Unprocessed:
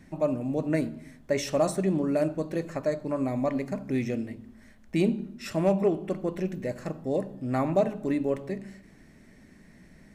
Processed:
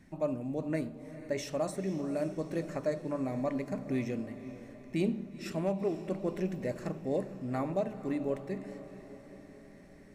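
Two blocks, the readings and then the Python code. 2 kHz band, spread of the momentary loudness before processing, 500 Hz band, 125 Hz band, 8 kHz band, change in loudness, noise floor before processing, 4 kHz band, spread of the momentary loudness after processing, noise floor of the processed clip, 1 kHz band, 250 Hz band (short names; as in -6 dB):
-5.5 dB, 9 LU, -6.5 dB, -6.0 dB, -7.5 dB, -6.0 dB, -55 dBFS, -6.5 dB, 14 LU, -53 dBFS, -6.5 dB, -6.0 dB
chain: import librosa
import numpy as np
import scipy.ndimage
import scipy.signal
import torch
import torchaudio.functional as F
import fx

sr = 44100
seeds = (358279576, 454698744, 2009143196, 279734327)

y = fx.rider(x, sr, range_db=3, speed_s=0.5)
y = fx.echo_diffused(y, sr, ms=478, feedback_pct=57, wet_db=-13.5)
y = y * 10.0 ** (-6.0 / 20.0)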